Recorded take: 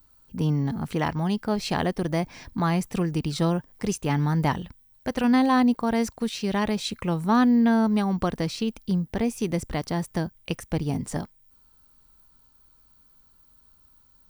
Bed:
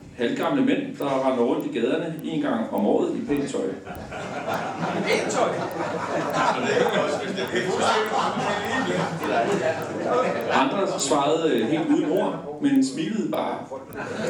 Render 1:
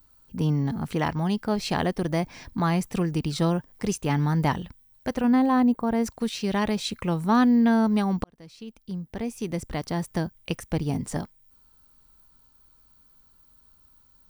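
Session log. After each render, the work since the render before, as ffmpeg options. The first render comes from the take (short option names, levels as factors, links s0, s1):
-filter_complex "[0:a]asettb=1/sr,asplit=3[s0][s1][s2];[s0]atrim=end=5.174[s3];[s1]atrim=start=5.17:end=6.06,asetpts=PTS-STARTPTS,afade=t=in:d=0.004:c=qsin,afade=t=out:st=0.886:d=0.004:c=qsin,equalizer=f=5100:t=o:w=2.8:g=-10.5[s4];[s2]atrim=start=6.056[s5];[s3][s4]acrossfade=d=0.004:c1=hsin:c2=qsin[s6];[s6][s5]acrossfade=d=0.004:c1=qsin:c2=hsin,asplit=2[s7][s8];[s7]atrim=end=8.24,asetpts=PTS-STARTPTS,afade=t=out:st=8.236:d=0.004:c=hsin[s9];[s8]atrim=start=8.24,asetpts=PTS-STARTPTS,afade=t=in:d=1.9[s10];[s9][s10]concat=n=2:v=0:a=1"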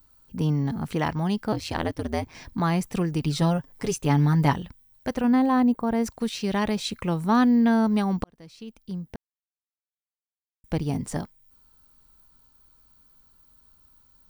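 -filter_complex "[0:a]asettb=1/sr,asplit=3[s0][s1][s2];[s0]atrim=end=1.524[s3];[s1]atrim=start=1.52:end=2.35,asetpts=PTS-STARTPTS,afade=t=in:d=0.004:c=qsin,afade=t=out:st=0.826:d=0.004:c=qsin,aeval=exprs='val(0)*sin(2*PI*81*n/s)':c=same[s4];[s2]atrim=start=2.346[s5];[s3][s4]acrossfade=d=0.004:c1=hsin:c2=qsin[s6];[s6][s5]acrossfade=d=0.004:c1=qsin:c2=hsin,asettb=1/sr,asplit=3[s7][s8][s9];[s7]atrim=end=3.204[s10];[s8]atrim=start=3.2:end=4.54,asetpts=PTS-STARTPTS,afade=t=in:d=0.004:c=qsin,afade=t=out:st=1.336:d=0.004:c=qsin,aecho=1:1:7.2:0.6,atrim=end_sample=59094[s11];[s9]atrim=start=4.536[s12];[s10][s11]acrossfade=d=0.004:c1=hsin:c2=qsin[s13];[s13][s12]acrossfade=d=0.004:c1=qsin:c2=hsin,asplit=3[s14][s15][s16];[s14]atrim=end=9.16,asetpts=PTS-STARTPTS,afade=t=out:st=9.156:d=0.004:c=hsin[s17];[s15]atrim=start=9.16:end=10.64,asetpts=PTS-STARTPTS,volume=0[s18];[s16]atrim=start=10.64,asetpts=PTS-STARTPTS,afade=t=in:d=0.004:c=hsin[s19];[s17][s18][s19]concat=n=3:v=0:a=1"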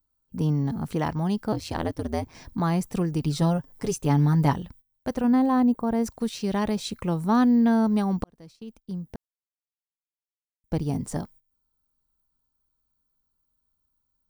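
-af "agate=range=0.141:threshold=0.00398:ratio=16:detection=peak,equalizer=f=2400:t=o:w=1.7:g=-6"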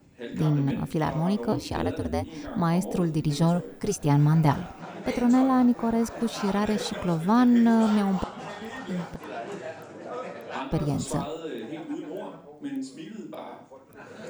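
-filter_complex "[1:a]volume=0.211[s0];[0:a][s0]amix=inputs=2:normalize=0"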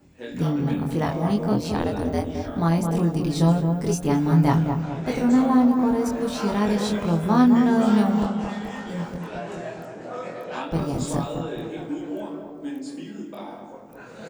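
-filter_complex "[0:a]asplit=2[s0][s1];[s1]adelay=24,volume=0.708[s2];[s0][s2]amix=inputs=2:normalize=0,asplit=2[s3][s4];[s4]adelay=214,lowpass=f=1000:p=1,volume=0.596,asplit=2[s5][s6];[s6]adelay=214,lowpass=f=1000:p=1,volume=0.52,asplit=2[s7][s8];[s8]adelay=214,lowpass=f=1000:p=1,volume=0.52,asplit=2[s9][s10];[s10]adelay=214,lowpass=f=1000:p=1,volume=0.52,asplit=2[s11][s12];[s12]adelay=214,lowpass=f=1000:p=1,volume=0.52,asplit=2[s13][s14];[s14]adelay=214,lowpass=f=1000:p=1,volume=0.52,asplit=2[s15][s16];[s16]adelay=214,lowpass=f=1000:p=1,volume=0.52[s17];[s3][s5][s7][s9][s11][s13][s15][s17]amix=inputs=8:normalize=0"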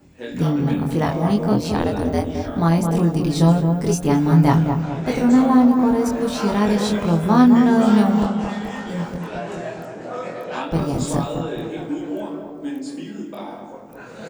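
-af "volume=1.58"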